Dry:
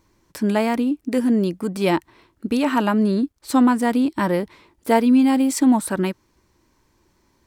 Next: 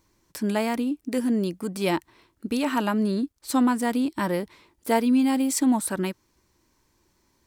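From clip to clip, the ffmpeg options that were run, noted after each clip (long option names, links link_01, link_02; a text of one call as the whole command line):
ffmpeg -i in.wav -af "highshelf=frequency=3700:gain=6.5,volume=-5.5dB" out.wav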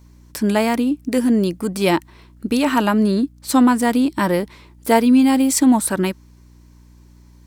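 ffmpeg -i in.wav -af "aeval=exprs='val(0)+0.00224*(sin(2*PI*60*n/s)+sin(2*PI*2*60*n/s)/2+sin(2*PI*3*60*n/s)/3+sin(2*PI*4*60*n/s)/4+sin(2*PI*5*60*n/s)/5)':channel_layout=same,volume=7.5dB" out.wav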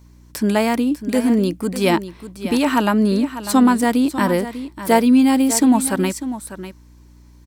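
ffmpeg -i in.wav -af "aecho=1:1:597:0.237" out.wav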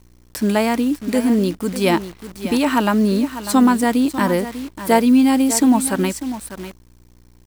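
ffmpeg -i in.wav -af "acrusher=bits=7:dc=4:mix=0:aa=0.000001" out.wav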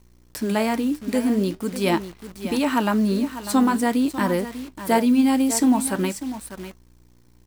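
ffmpeg -i in.wav -af "flanger=delay=4.9:depth=6.8:regen=-73:speed=0.45:shape=sinusoidal" out.wav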